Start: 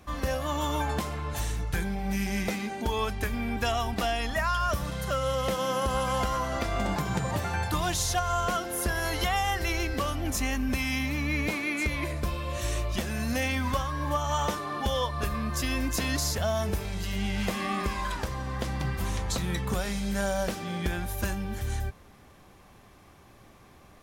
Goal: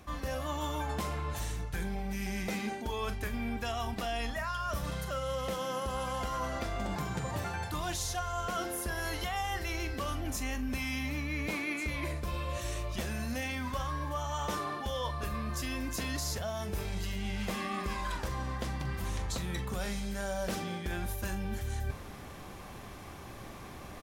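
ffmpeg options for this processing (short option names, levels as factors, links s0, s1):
-filter_complex "[0:a]areverse,acompressor=threshold=0.00891:ratio=8,areverse,asplit=2[s0][s1];[s1]adelay=43,volume=0.251[s2];[s0][s2]amix=inputs=2:normalize=0,volume=2.51"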